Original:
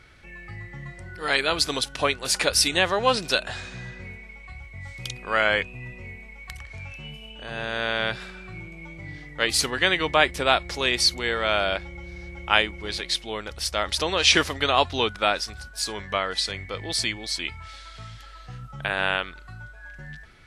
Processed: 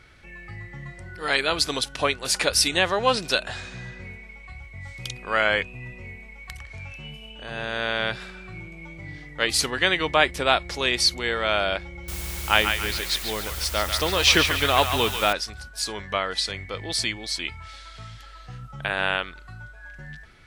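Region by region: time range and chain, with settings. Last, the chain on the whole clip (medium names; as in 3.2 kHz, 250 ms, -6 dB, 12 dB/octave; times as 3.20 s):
12.08–15.33 s: bass shelf 110 Hz +8.5 dB + word length cut 6-bit, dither triangular + band-passed feedback delay 142 ms, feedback 52%, band-pass 2 kHz, level -4.5 dB
whole clip: none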